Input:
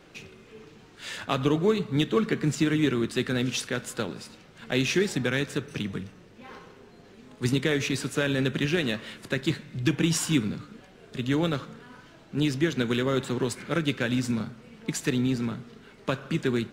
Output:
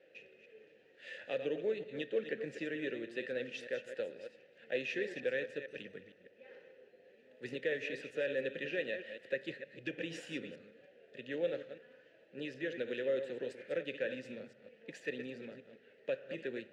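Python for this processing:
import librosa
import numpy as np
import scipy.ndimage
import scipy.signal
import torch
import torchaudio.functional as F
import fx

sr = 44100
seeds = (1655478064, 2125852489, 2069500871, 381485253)

y = fx.reverse_delay(x, sr, ms=153, wet_db=-9.5)
y = fx.vowel_filter(y, sr, vowel='e')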